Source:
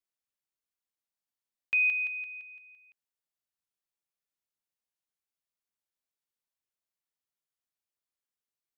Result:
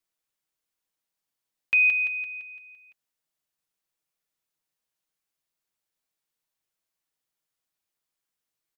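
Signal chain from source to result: comb 6.3 ms, depth 35%; gain +6 dB

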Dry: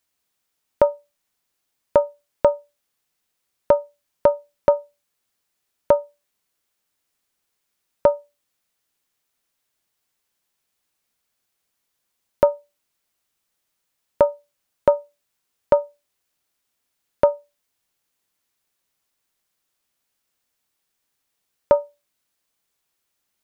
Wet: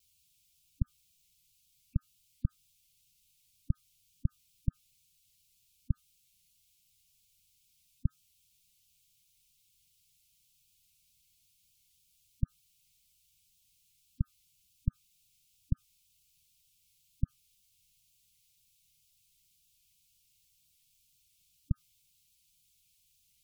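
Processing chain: inverse Chebyshev band-stop 450–970 Hz, stop band 70 dB; spectral gate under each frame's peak -15 dB strong; low shelf 130 Hz +7 dB; in parallel at 0 dB: limiter -28.5 dBFS, peak gain reduction 11 dB; on the sum: vibrato 2 Hz 34 cents; gain +1 dB

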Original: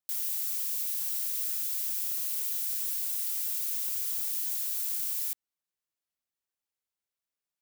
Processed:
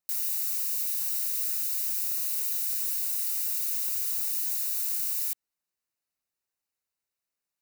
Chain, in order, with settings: Butterworth band-stop 3300 Hz, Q 6.8; gain +2.5 dB

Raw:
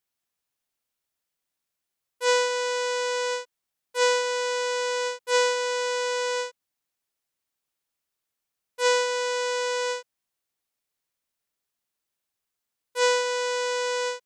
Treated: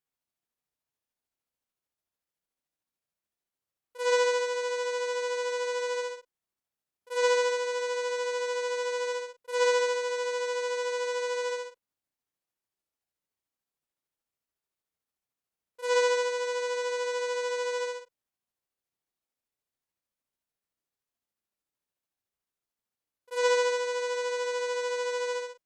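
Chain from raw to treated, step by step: added harmonics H 5 -44 dB, 6 -34 dB, 7 -36 dB, 8 -37 dB, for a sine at -10 dBFS; tilt shelf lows +3.5 dB, about 1300 Hz; granular stretch 1.8×, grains 0.148 s; gain -3.5 dB

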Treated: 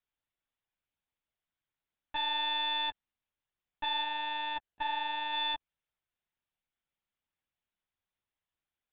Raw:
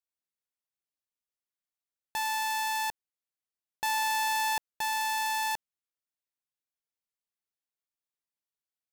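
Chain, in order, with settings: limiter -32.5 dBFS, peak gain reduction 9 dB; 4.02–5.33 notch comb 1200 Hz; monotone LPC vocoder at 8 kHz 300 Hz; gain +6 dB

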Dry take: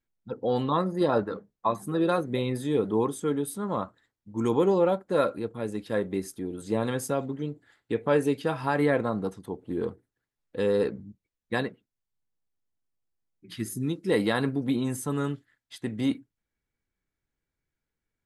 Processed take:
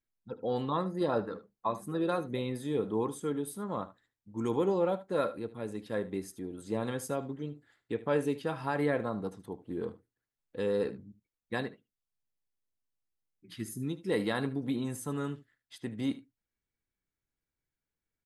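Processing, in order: echo 75 ms -16 dB; gain -6 dB

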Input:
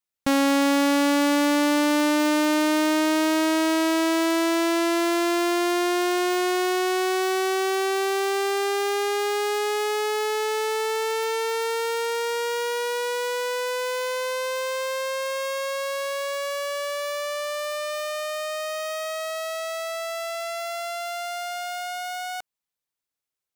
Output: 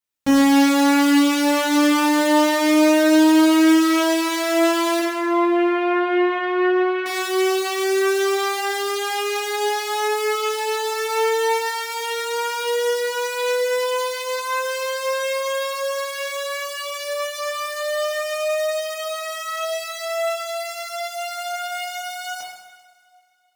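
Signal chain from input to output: 4.99–7.06 LPF 2500 Hz 24 dB/oct; two-slope reverb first 0.97 s, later 2.7 s, from -18 dB, DRR -5.5 dB; gain -3 dB

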